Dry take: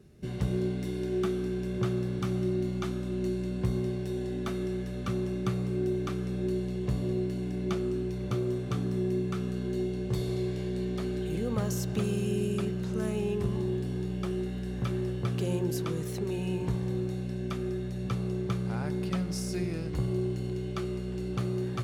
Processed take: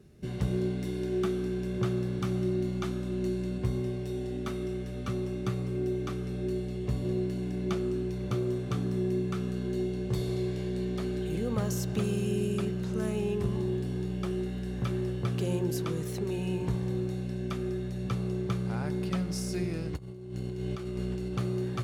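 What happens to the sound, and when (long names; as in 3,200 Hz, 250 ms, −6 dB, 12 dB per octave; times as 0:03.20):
0:03.58–0:07.05: notch comb filter 170 Hz
0:19.96–0:21.33: compressor whose output falls as the input rises −35 dBFS, ratio −0.5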